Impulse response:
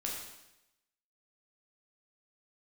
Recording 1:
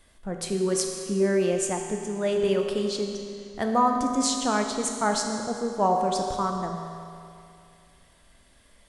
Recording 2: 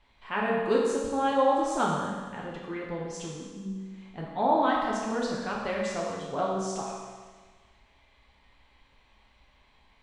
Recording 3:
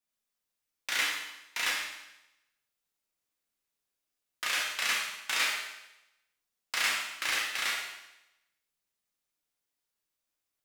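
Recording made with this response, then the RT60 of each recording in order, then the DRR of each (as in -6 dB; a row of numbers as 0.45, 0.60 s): 3; 2.6, 1.5, 0.90 s; 2.0, -4.5, -3.0 dB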